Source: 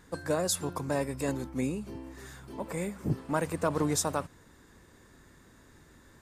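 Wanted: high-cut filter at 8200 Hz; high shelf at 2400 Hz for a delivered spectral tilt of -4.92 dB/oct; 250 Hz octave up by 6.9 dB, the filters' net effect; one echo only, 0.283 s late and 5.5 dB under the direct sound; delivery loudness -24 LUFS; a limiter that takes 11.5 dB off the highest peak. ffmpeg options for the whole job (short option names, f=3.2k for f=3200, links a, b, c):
-af "lowpass=8.2k,equalizer=f=250:t=o:g=8.5,highshelf=f=2.4k:g=8,alimiter=limit=-22.5dB:level=0:latency=1,aecho=1:1:283:0.531,volume=8.5dB"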